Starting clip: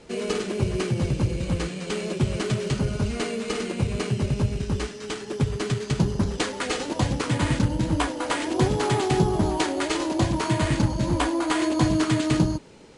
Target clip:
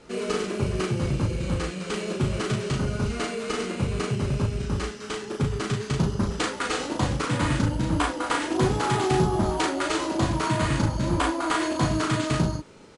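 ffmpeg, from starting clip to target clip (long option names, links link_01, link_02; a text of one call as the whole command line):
ffmpeg -i in.wav -filter_complex "[0:a]equalizer=frequency=1300:width_type=o:width=0.5:gain=6,asplit=2[link_01][link_02];[link_02]adelay=37,volume=-3.5dB[link_03];[link_01][link_03]amix=inputs=2:normalize=0,volume=-2.5dB" out.wav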